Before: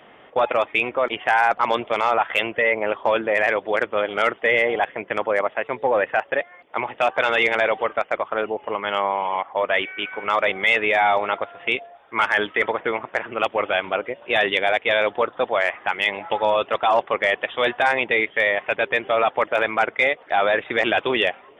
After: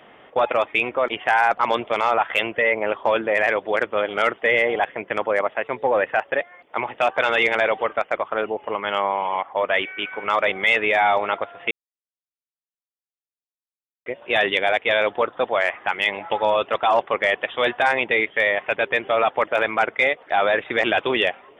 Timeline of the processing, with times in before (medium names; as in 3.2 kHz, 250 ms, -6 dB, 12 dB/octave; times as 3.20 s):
11.71–14.06 s: mute